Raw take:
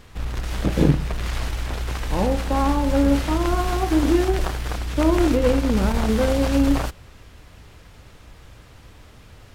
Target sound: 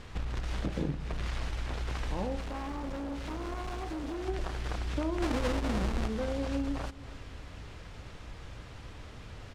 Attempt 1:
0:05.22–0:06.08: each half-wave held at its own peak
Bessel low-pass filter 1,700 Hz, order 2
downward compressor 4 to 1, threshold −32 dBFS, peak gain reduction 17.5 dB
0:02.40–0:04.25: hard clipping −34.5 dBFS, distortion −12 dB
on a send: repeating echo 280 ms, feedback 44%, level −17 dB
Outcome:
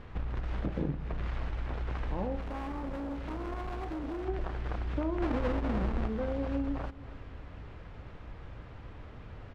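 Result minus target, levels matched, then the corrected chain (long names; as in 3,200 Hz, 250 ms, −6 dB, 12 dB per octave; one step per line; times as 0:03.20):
8,000 Hz band −16.0 dB
0:05.22–0:06.08: each half-wave held at its own peak
Bessel low-pass filter 6,300 Hz, order 2
downward compressor 4 to 1, threshold −32 dBFS, peak gain reduction 17.5 dB
0:02.40–0:04.25: hard clipping −34.5 dBFS, distortion −12 dB
on a send: repeating echo 280 ms, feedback 44%, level −17 dB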